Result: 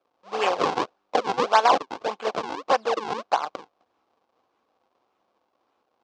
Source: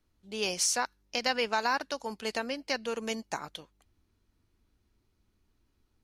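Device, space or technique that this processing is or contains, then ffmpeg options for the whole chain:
circuit-bent sampling toy: -af "acrusher=samples=42:mix=1:aa=0.000001:lfo=1:lforange=67.2:lforate=1.7,highpass=440,equalizer=f=510:t=q:w=4:g=6,equalizer=f=760:t=q:w=4:g=9,equalizer=f=1.1k:t=q:w=4:g=8,equalizer=f=1.9k:t=q:w=4:g=-5,lowpass=f=5.7k:w=0.5412,lowpass=f=5.7k:w=1.3066,volume=7.5dB"

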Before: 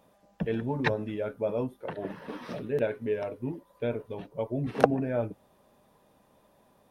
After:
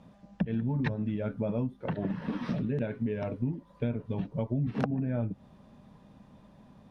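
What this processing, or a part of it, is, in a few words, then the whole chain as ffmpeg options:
jukebox: -af "lowpass=5.6k,lowshelf=f=290:t=q:w=1.5:g=9.5,acompressor=threshold=-31dB:ratio=5,volume=3dB"

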